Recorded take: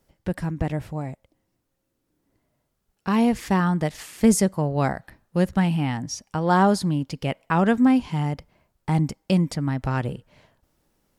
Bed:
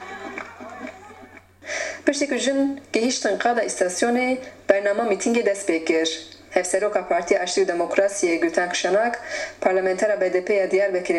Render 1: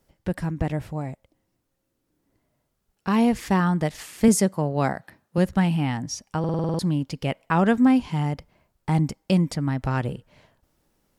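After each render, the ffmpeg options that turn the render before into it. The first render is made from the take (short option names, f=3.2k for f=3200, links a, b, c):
-filter_complex "[0:a]asettb=1/sr,asplit=3[a][b][c];[a]atrim=end=4.284[d];[b]atrim=start=4.28:end=5.38,asetpts=PTS-STARTPTS,afade=t=in:d=0.004:c=qsin,afade=t=out:st=1.096:d=0.004:c=qsin,highpass=120[e];[c]atrim=start=5.376[f];[d][e]acrossfade=d=0.004:c1=hsin:c2=qsin[g];[g][f]acrossfade=d=0.004:c1=qsin:c2=hsin,asplit=9[h][i][j][k][l][m][n][o][p];[h]atrim=end=6.442[q];[i]atrim=start=6.388:end=6.442[r];[j]atrim=start=6.388:end=6.442[s];[k]atrim=start=6.388:end=6.442[t];[l]atrim=start=6.388:end=6.442[u];[m]atrim=start=6.388:end=6.442[v];[n]atrim=start=6.388:end=6.442[w];[o]atrim=start=6.388:end=6.442[x];[p]atrim=start=6.788[y];[q][r]acrossfade=d=0.004:c1=hsin:c2=hsin[z];[z][s]acrossfade=d=0.004:c1=hsin:c2=hsin[aa];[aa][t]acrossfade=d=0.004:c1=hsin:c2=hsin[ab];[ab][u]acrossfade=d=0.004:c1=hsin:c2=hsin[ac];[ac][v]acrossfade=d=0.004:c1=hsin:c2=hsin[ad];[ad][w]acrossfade=d=0.004:c1=hsin:c2=hsin[ae];[ae][x]acrossfade=d=0.004:c1=hsin:c2=hsin[af];[af][y]acrossfade=d=0.004:c1=hsin:c2=hsin"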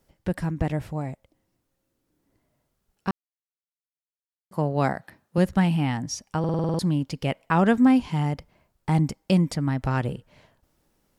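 -filter_complex "[0:a]asplit=3[a][b][c];[a]atrim=end=3.11,asetpts=PTS-STARTPTS,afade=t=out:st=3.106:d=0.004:c=hsin[d];[b]atrim=start=3.11:end=4.51,asetpts=PTS-STARTPTS,volume=0[e];[c]atrim=start=4.51,asetpts=PTS-STARTPTS,afade=t=in:d=0.004:c=hsin[f];[d][e][f]concat=n=3:v=0:a=1"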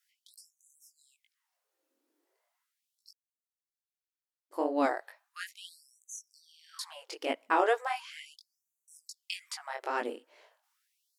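-af "flanger=delay=17.5:depth=5:speed=2.3,afftfilt=real='re*gte(b*sr/1024,240*pow(6000/240,0.5+0.5*sin(2*PI*0.37*pts/sr)))':imag='im*gte(b*sr/1024,240*pow(6000/240,0.5+0.5*sin(2*PI*0.37*pts/sr)))':win_size=1024:overlap=0.75"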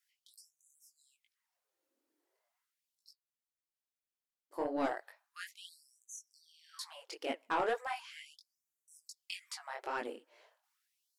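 -af "asoftclip=type=tanh:threshold=-20.5dB,flanger=delay=0.4:depth=8.3:regen=57:speed=1.4:shape=sinusoidal"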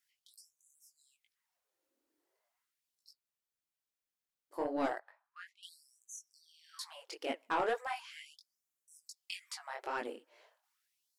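-filter_complex "[0:a]asettb=1/sr,asplit=3[a][b][c];[a]atrim=end=4.994[d];[b]atrim=start=4.99:end=5.63,asetpts=PTS-STARTPTS,afade=t=in:d=0.004:c=qsin,afade=t=out:st=0.636:d=0.004:c=qsin,bandpass=f=1k:t=q:w=1.2[e];[c]atrim=start=5.626[f];[d][e]acrossfade=d=0.004:c1=hsin:c2=qsin[g];[g][f]acrossfade=d=0.004:c1=qsin:c2=hsin"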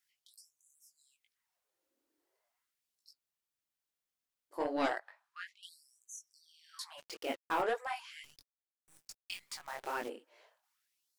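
-filter_complex "[0:a]asettb=1/sr,asplit=3[a][b][c];[a]atrim=end=4.604[d];[b]atrim=start=4.6:end=5.58,asetpts=PTS-STARTPTS,afade=t=in:d=0.004:c=qsin,afade=t=out:st=0.976:d=0.004:c=qsin,equalizer=f=3.7k:w=0.46:g=8.5[e];[c]atrim=start=5.576[f];[d][e]acrossfade=d=0.004:c1=hsin:c2=qsin[g];[g][f]acrossfade=d=0.004:c1=qsin:c2=hsin,asplit=3[h][i][j];[h]afade=t=out:st=6.97:d=0.02[k];[i]acrusher=bits=7:mix=0:aa=0.5,afade=t=in:st=6.97:d=0.02,afade=t=out:st=7.61:d=0.02[l];[j]afade=t=in:st=7.61:d=0.02[m];[k][l][m]amix=inputs=3:normalize=0,asplit=3[n][o][p];[n]afade=t=out:st=8.23:d=0.02[q];[o]acrusher=bits=9:dc=4:mix=0:aa=0.000001,afade=t=in:st=8.23:d=0.02,afade=t=out:st=10.08:d=0.02[r];[p]afade=t=in:st=10.08:d=0.02[s];[q][r][s]amix=inputs=3:normalize=0"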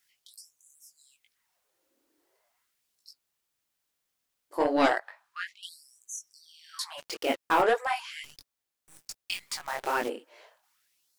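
-af "volume=9.5dB"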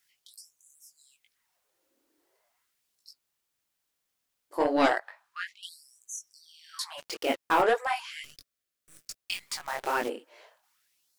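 -filter_complex "[0:a]asettb=1/sr,asplit=3[a][b][c];[a]atrim=end=8.184[d];[b]atrim=start=8.18:end=9.16,asetpts=PTS-STARTPTS,afade=t=in:d=0.004:c=qsin,afade=t=out:st=0.976:d=0.004:c=qsin,asuperstop=centerf=880:order=4:qfactor=2.4[e];[c]atrim=start=9.156[f];[d][e]acrossfade=d=0.004:c1=hsin:c2=qsin[g];[g][f]acrossfade=d=0.004:c1=qsin:c2=hsin"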